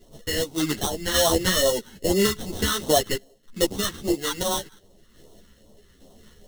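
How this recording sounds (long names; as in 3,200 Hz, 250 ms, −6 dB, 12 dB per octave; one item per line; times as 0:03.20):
aliases and images of a low sample rate 2,400 Hz, jitter 0%
phaser sweep stages 2, 2.5 Hz, lowest notch 640–1,600 Hz
sample-and-hold tremolo
a shimmering, thickened sound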